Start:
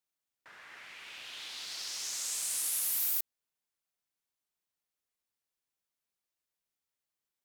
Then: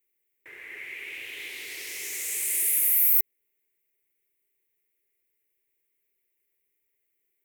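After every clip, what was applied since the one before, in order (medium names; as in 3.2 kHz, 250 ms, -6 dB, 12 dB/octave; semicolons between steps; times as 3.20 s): FFT filter 120 Hz 0 dB, 200 Hz -9 dB, 400 Hz +11 dB, 650 Hz -9 dB, 1.4 kHz -13 dB, 2.1 kHz +9 dB, 3.3 kHz -7 dB, 4.7 kHz -14 dB, 15 kHz +9 dB; in parallel at +2 dB: peak limiter -21.5 dBFS, peak gain reduction 11 dB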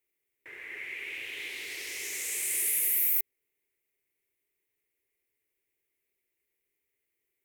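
treble shelf 12 kHz -9 dB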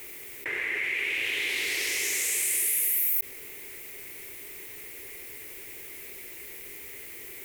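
level flattener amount 70%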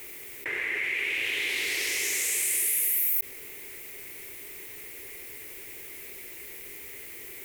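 no audible change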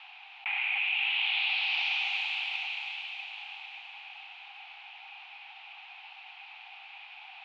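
mistuned SSB +390 Hz 380–3500 Hz; echo that smears into a reverb 610 ms, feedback 43%, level -6.5 dB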